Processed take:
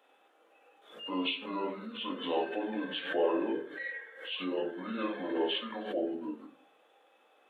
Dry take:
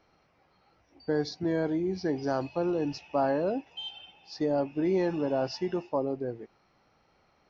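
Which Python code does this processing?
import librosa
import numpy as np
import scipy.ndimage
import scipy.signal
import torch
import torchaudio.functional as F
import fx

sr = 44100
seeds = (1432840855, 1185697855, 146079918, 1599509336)

y = fx.pitch_heads(x, sr, semitones=-8.5)
y = scipy.signal.sosfilt(scipy.signal.butter(4, 400.0, 'highpass', fs=sr, output='sos'), y)
y = fx.high_shelf(y, sr, hz=3000.0, db=10.0)
y = fx.room_shoebox(y, sr, seeds[0], volume_m3=300.0, walls='furnished', distance_m=2.1)
y = fx.pre_swell(y, sr, db_per_s=90.0)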